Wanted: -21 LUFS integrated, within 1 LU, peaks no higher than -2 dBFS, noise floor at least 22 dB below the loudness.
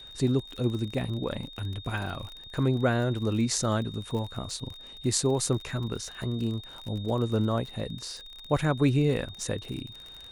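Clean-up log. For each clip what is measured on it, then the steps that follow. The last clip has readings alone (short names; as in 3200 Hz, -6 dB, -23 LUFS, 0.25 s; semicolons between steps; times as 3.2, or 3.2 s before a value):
ticks 42/s; steady tone 3700 Hz; tone level -44 dBFS; loudness -29.5 LUFS; peak -7.5 dBFS; loudness target -21.0 LUFS
-> de-click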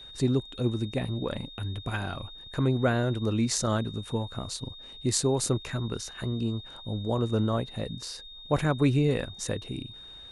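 ticks 0/s; steady tone 3700 Hz; tone level -44 dBFS
-> notch 3700 Hz, Q 30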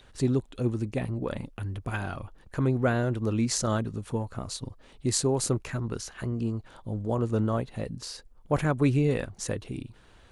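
steady tone none; loudness -29.5 LUFS; peak -7.5 dBFS; loudness target -21.0 LUFS
-> gain +8.5 dB; limiter -2 dBFS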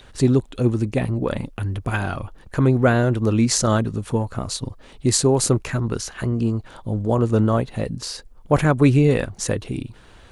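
loudness -21.0 LUFS; peak -2.0 dBFS; noise floor -47 dBFS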